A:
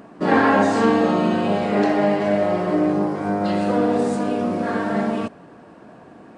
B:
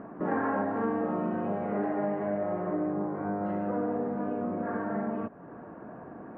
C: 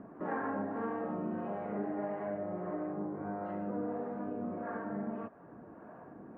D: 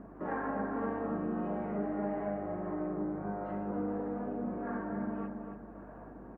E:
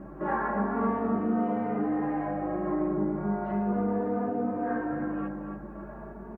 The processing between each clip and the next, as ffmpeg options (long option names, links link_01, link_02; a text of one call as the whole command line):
ffmpeg -i in.wav -af "lowpass=frequency=1700:width=0.5412,lowpass=frequency=1700:width=1.3066,acompressor=threshold=-37dB:ratio=2" out.wav
ffmpeg -i in.wav -filter_complex "[0:a]acrossover=split=460[link_01][link_02];[link_01]aeval=exprs='val(0)*(1-0.5/2+0.5/2*cos(2*PI*1.6*n/s))':channel_layout=same[link_03];[link_02]aeval=exprs='val(0)*(1-0.5/2-0.5/2*cos(2*PI*1.6*n/s))':channel_layout=same[link_04];[link_03][link_04]amix=inputs=2:normalize=0,flanger=delay=0.9:depth=6:regen=-77:speed=0.9:shape=triangular" out.wav
ffmpeg -i in.wav -filter_complex "[0:a]aeval=exprs='val(0)+0.00141*(sin(2*PI*50*n/s)+sin(2*PI*2*50*n/s)/2+sin(2*PI*3*50*n/s)/3+sin(2*PI*4*50*n/s)/4+sin(2*PI*5*50*n/s)/5)':channel_layout=same,asplit=2[link_01][link_02];[link_02]adelay=277,lowpass=frequency=2300:poles=1,volume=-5dB,asplit=2[link_03][link_04];[link_04]adelay=277,lowpass=frequency=2300:poles=1,volume=0.38,asplit=2[link_05][link_06];[link_06]adelay=277,lowpass=frequency=2300:poles=1,volume=0.38,asplit=2[link_07][link_08];[link_08]adelay=277,lowpass=frequency=2300:poles=1,volume=0.38,asplit=2[link_09][link_10];[link_10]adelay=277,lowpass=frequency=2300:poles=1,volume=0.38[link_11];[link_01][link_03][link_05][link_07][link_09][link_11]amix=inputs=6:normalize=0" out.wav
ffmpeg -i in.wav -filter_complex "[0:a]asplit=2[link_01][link_02];[link_02]adelay=14,volume=-7dB[link_03];[link_01][link_03]amix=inputs=2:normalize=0,asplit=2[link_04][link_05];[link_05]adelay=3.2,afreqshift=0.36[link_06];[link_04][link_06]amix=inputs=2:normalize=1,volume=9dB" out.wav